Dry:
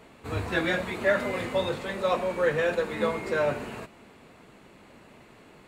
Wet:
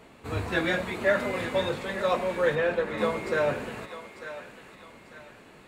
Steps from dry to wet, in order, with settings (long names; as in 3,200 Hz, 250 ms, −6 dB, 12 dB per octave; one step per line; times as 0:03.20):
0:02.55–0:02.98: low-pass filter 3,000 Hz
feedback echo with a high-pass in the loop 896 ms, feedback 45%, high-pass 860 Hz, level −10 dB